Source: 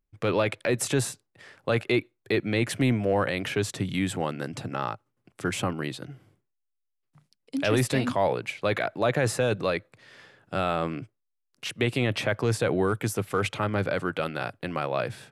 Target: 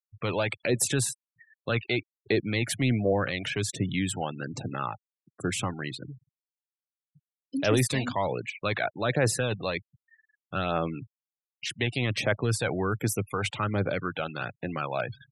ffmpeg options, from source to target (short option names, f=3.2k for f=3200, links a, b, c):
-af "highshelf=f=3.2k:g=7,aphaser=in_gain=1:out_gain=1:delay=1.4:decay=0.39:speed=1.3:type=triangular,afftfilt=real='re*gte(hypot(re,im),0.0224)':imag='im*gte(hypot(re,im),0.0224)':win_size=1024:overlap=0.75,volume=-3.5dB"